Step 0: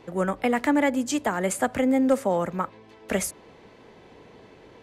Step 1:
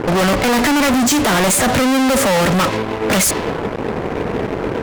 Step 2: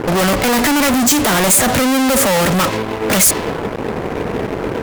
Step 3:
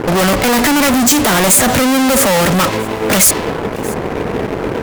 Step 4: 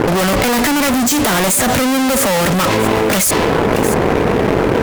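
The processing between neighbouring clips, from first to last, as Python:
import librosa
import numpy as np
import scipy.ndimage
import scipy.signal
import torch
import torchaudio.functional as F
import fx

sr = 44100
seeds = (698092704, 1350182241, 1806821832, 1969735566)

y1 = fx.env_lowpass(x, sr, base_hz=670.0, full_db=-22.0)
y1 = fx.fuzz(y1, sr, gain_db=49.0, gate_db=-54.0)
y2 = fx.high_shelf(y1, sr, hz=8900.0, db=9.5)
y3 = y2 + 10.0 ** (-21.0 / 20.0) * np.pad(y2, (int(632 * sr / 1000.0), 0))[:len(y2)]
y3 = y3 * librosa.db_to_amplitude(2.0)
y4 = fx.env_flatten(y3, sr, amount_pct=100)
y4 = y4 * librosa.db_to_amplitude(-6.5)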